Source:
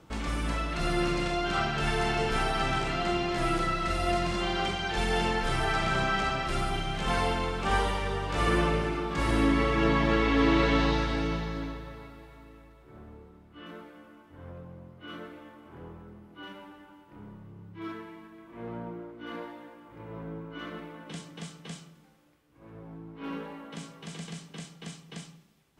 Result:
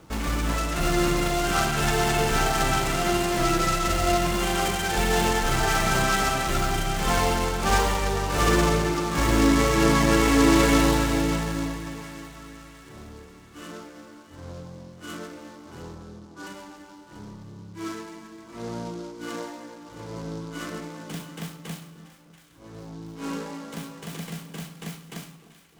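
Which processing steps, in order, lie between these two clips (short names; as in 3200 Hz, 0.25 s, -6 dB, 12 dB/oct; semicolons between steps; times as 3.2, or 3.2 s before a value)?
15.95–16.47 steep low-pass 1900 Hz 72 dB/oct; on a send: split-band echo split 1100 Hz, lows 0.302 s, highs 0.685 s, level -15.5 dB; on the sum: noise-modulated delay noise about 4400 Hz, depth 0.046 ms; gain +5 dB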